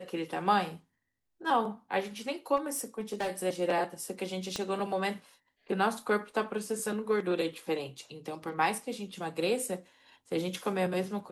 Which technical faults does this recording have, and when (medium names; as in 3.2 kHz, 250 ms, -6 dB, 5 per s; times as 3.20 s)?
2.56–3.31 s: clipped -28.5 dBFS
4.56 s: pop -18 dBFS